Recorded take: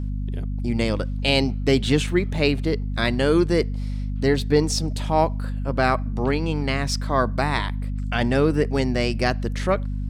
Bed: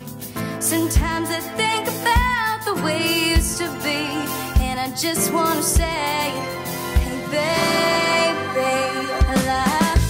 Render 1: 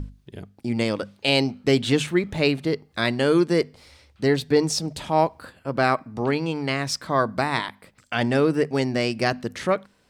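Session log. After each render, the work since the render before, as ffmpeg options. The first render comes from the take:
-af "bandreject=f=50:t=h:w=6,bandreject=f=100:t=h:w=6,bandreject=f=150:t=h:w=6,bandreject=f=200:t=h:w=6,bandreject=f=250:t=h:w=6"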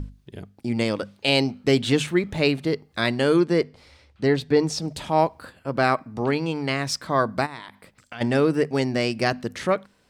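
-filter_complex "[0:a]asettb=1/sr,asplit=3[s0][s1][s2];[s0]atrim=end=3.364[s3];[s1]atrim=start=3.36:end=4.82,asetpts=PTS-STARTPTS,afade=t=in:d=0.004:c=qsin,afade=t=out:st=1.456:d=0.004:c=qsin,highshelf=f=6900:g=-11[s4];[s2]atrim=start=4.816[s5];[s3][s4]acrossfade=d=0.004:c1=hsin:c2=qsin[s6];[s6][s5]acrossfade=d=0.004:c1=qsin:c2=hsin,asplit=3[s7][s8][s9];[s7]afade=t=out:st=7.45:d=0.02[s10];[s8]acompressor=threshold=0.0141:ratio=3:attack=3.2:release=140:knee=1:detection=peak,afade=t=in:st=7.45:d=0.02,afade=t=out:st=8.2:d=0.02[s11];[s9]afade=t=in:st=8.2:d=0.02[s12];[s10][s11][s12]amix=inputs=3:normalize=0"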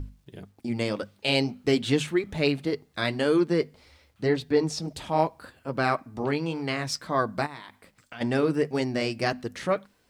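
-af "flanger=delay=2.5:depth=4.5:regen=-52:speed=1.8:shape=sinusoidal,acrusher=bits=11:mix=0:aa=0.000001"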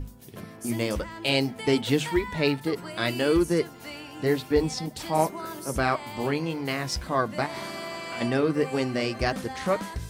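-filter_complex "[1:a]volume=0.133[s0];[0:a][s0]amix=inputs=2:normalize=0"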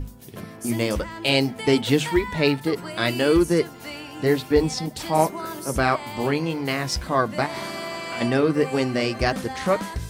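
-af "volume=1.58"

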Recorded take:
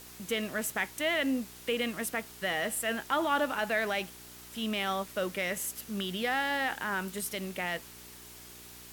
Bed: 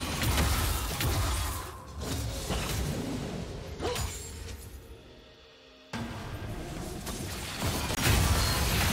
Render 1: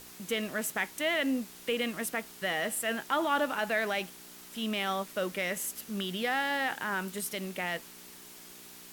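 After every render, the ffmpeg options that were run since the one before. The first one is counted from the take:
-af "bandreject=f=60:t=h:w=4,bandreject=f=120:t=h:w=4"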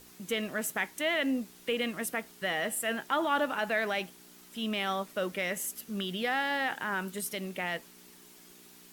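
-af "afftdn=nr=6:nf=-50"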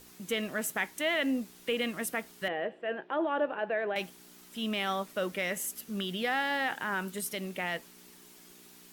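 -filter_complex "[0:a]asettb=1/sr,asplit=3[s0][s1][s2];[s0]atrim=end=2.484[s3];[s1]atrim=start=2.48:end=3.96,asetpts=PTS-STARTPTS,afade=t=in:d=0.004:c=qsin,afade=t=out:st=1.476:d=0.004:c=qsin,highpass=190,equalizer=f=240:t=q:w=4:g=-8,equalizer=f=360:t=q:w=4:g=5,equalizer=f=520:t=q:w=4:g=4,equalizer=f=940:t=q:w=4:g=-4,equalizer=f=1300:t=q:w=4:g=-8,equalizer=f=2100:t=q:w=4:g=-9,lowpass=f=2400:w=0.5412,lowpass=f=2400:w=1.3066[s4];[s2]atrim=start=3.956[s5];[s3][s4]acrossfade=d=0.004:c1=hsin:c2=qsin[s6];[s6][s5]acrossfade=d=0.004:c1=qsin:c2=hsin"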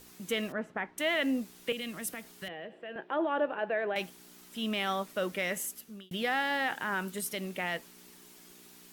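-filter_complex "[0:a]asettb=1/sr,asplit=3[s0][s1][s2];[s0]atrim=end=0.524[s3];[s1]atrim=start=0.52:end=0.98,asetpts=PTS-STARTPTS,afade=t=in:d=0.004:c=qsin,afade=t=out:st=0.456:d=0.004:c=qsin,lowpass=1500[s4];[s2]atrim=start=0.976[s5];[s3][s4]acrossfade=d=0.004:c1=hsin:c2=qsin[s6];[s6][s5]acrossfade=d=0.004:c1=qsin:c2=hsin,asettb=1/sr,asplit=3[s7][s8][s9];[s7]atrim=end=1.724[s10];[s8]atrim=start=1.72:end=2.96,asetpts=PTS-STARTPTS,afade=t=in:d=0.004:c=qsin,afade=t=out:st=1.236:d=0.004:c=qsin,acrossover=split=190|3000[s11][s12][s13];[s12]acompressor=threshold=0.01:ratio=6:attack=3.2:release=140:knee=2.83:detection=peak[s14];[s11][s14][s13]amix=inputs=3:normalize=0[s15];[s9]atrim=start=2.956[s16];[s10][s15]acrossfade=d=0.004:c1=hsin:c2=qsin[s17];[s17][s16]acrossfade=d=0.004:c1=qsin:c2=hsin,asplit=2[s18][s19];[s18]atrim=end=6.11,asetpts=PTS-STARTPTS,afade=t=out:st=5.59:d=0.52[s20];[s19]atrim=start=6.11,asetpts=PTS-STARTPTS,afade=t=in:d=0.004:c=hsin[s21];[s20][s21]concat=n=2:v=0:a=1"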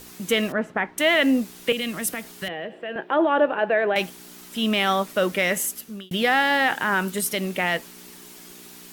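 -af "volume=3.35"

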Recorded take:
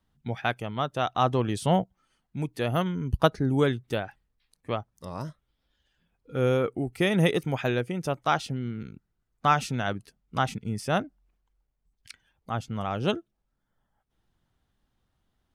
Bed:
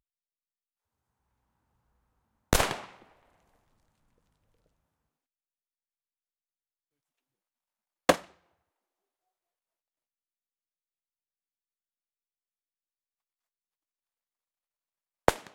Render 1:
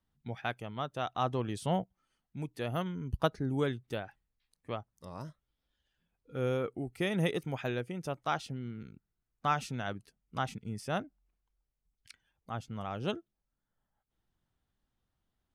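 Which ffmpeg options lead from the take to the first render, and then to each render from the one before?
-af "volume=0.398"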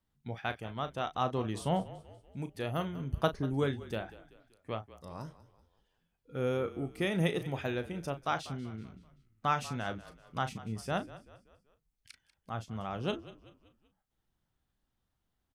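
-filter_complex "[0:a]asplit=2[s0][s1];[s1]adelay=36,volume=0.282[s2];[s0][s2]amix=inputs=2:normalize=0,asplit=5[s3][s4][s5][s6][s7];[s4]adelay=191,afreqshift=-37,volume=0.141[s8];[s5]adelay=382,afreqshift=-74,volume=0.0638[s9];[s6]adelay=573,afreqshift=-111,volume=0.0285[s10];[s7]adelay=764,afreqshift=-148,volume=0.0129[s11];[s3][s8][s9][s10][s11]amix=inputs=5:normalize=0"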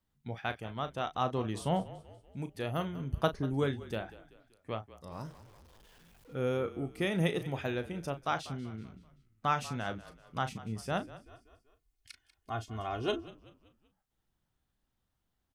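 -filter_complex "[0:a]asettb=1/sr,asplit=3[s0][s1][s2];[s0]atrim=end=5.124[s3];[s1]atrim=start=5.12:end=6.35,asetpts=PTS-STARTPTS,afade=t=in:d=0.004:c=qsin,afade=t=out:st=1.226:d=0.004:c=qsin,aeval=exprs='val(0)+0.5*0.00178*sgn(val(0))':c=same[s4];[s2]atrim=start=6.346[s5];[s3][s4]acrossfade=d=0.004:c1=hsin:c2=qsin[s6];[s6][s5]acrossfade=d=0.004:c1=qsin:c2=hsin,asettb=1/sr,asplit=3[s7][s8][s9];[s7]atrim=end=11.254[s10];[s8]atrim=start=11.25:end=13.28,asetpts=PTS-STARTPTS,afade=t=in:d=0.004:c=qsin,afade=t=out:st=2.026:d=0.004:c=qsin,aecho=1:1:2.8:0.84,atrim=end_sample=89523[s11];[s9]atrim=start=13.276[s12];[s10][s11]acrossfade=d=0.004:c1=hsin:c2=qsin[s13];[s13][s12]acrossfade=d=0.004:c1=qsin:c2=hsin"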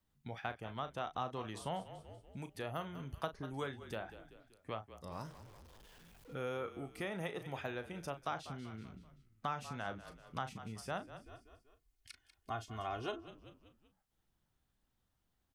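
-filter_complex "[0:a]acrossover=split=670|1500[s0][s1][s2];[s0]acompressor=threshold=0.00562:ratio=4[s3];[s1]acompressor=threshold=0.01:ratio=4[s4];[s2]acompressor=threshold=0.00316:ratio=4[s5];[s3][s4][s5]amix=inputs=3:normalize=0"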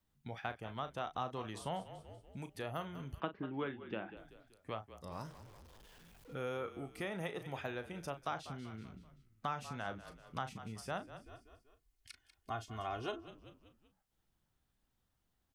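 -filter_complex "[0:a]asettb=1/sr,asplit=3[s0][s1][s2];[s0]atrim=end=3.204[s3];[s1]atrim=start=3.2:end=4.17,asetpts=PTS-STARTPTS,afade=t=in:d=0.004:c=qsin,afade=t=out:st=0.966:d=0.004:c=qsin,highpass=140,equalizer=f=200:t=q:w=4:g=7,equalizer=f=320:t=q:w=4:g=9,equalizer=f=670:t=q:w=4:g=-3,equalizer=f=2800:t=q:w=4:g=5,lowpass=f=3000:w=0.5412,lowpass=f=3000:w=1.3066[s4];[s2]atrim=start=4.166[s5];[s3][s4]acrossfade=d=0.004:c1=hsin:c2=qsin[s6];[s6][s5]acrossfade=d=0.004:c1=qsin:c2=hsin"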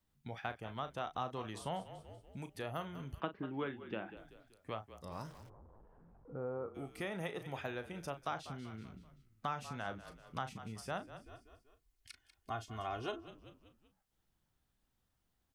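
-filter_complex "[0:a]asplit=3[s0][s1][s2];[s0]afade=t=out:st=5.48:d=0.02[s3];[s1]lowpass=f=1100:w=0.5412,lowpass=f=1100:w=1.3066,afade=t=in:st=5.48:d=0.02,afade=t=out:st=6.74:d=0.02[s4];[s2]afade=t=in:st=6.74:d=0.02[s5];[s3][s4][s5]amix=inputs=3:normalize=0"

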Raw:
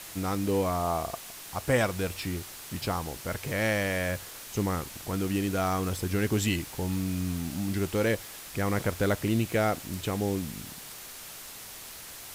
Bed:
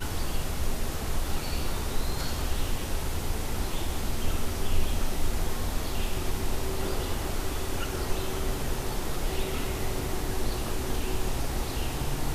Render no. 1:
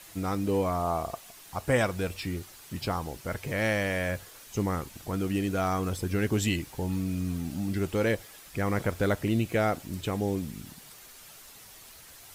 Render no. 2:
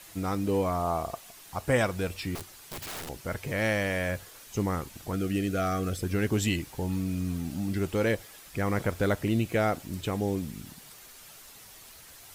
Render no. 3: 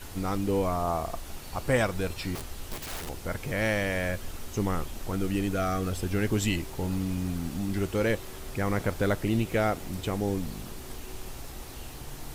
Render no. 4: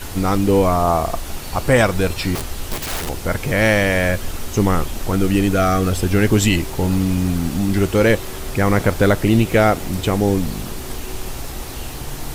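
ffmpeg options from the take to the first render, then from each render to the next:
-af "afftdn=nr=8:nf=-44"
-filter_complex "[0:a]asettb=1/sr,asplit=3[s0][s1][s2];[s0]atrim=end=2.354[s3];[s1]atrim=start=2.35:end=3.09,asetpts=PTS-STARTPTS,afade=t=in:d=0.004:c=qsin,afade=t=out:st=0.736:d=0.004:c=qsin,aeval=exprs='(mod(44.7*val(0)+1,2)-1)/44.7':c=same[s4];[s2]atrim=start=3.086[s5];[s3][s4]acrossfade=d=0.004:c1=hsin:c2=qsin[s6];[s6][s5]acrossfade=d=0.004:c1=qsin:c2=hsin,asettb=1/sr,asplit=3[s7][s8][s9];[s7]atrim=end=5.134[s10];[s8]atrim=start=5.13:end=6.03,asetpts=PTS-STARTPTS,afade=t=in:d=0.004:c=qsin,afade=t=out:st=0.896:d=0.004:c=qsin,asuperstop=centerf=930:order=8:qfactor=2.5[s11];[s9]atrim=start=6.026[s12];[s10][s11]acrossfade=d=0.004:c1=hsin:c2=qsin[s13];[s13][s12]acrossfade=d=0.004:c1=qsin:c2=hsin"
-filter_complex "[1:a]volume=0.266[s0];[0:a][s0]amix=inputs=2:normalize=0"
-af "volume=3.98,alimiter=limit=0.708:level=0:latency=1"

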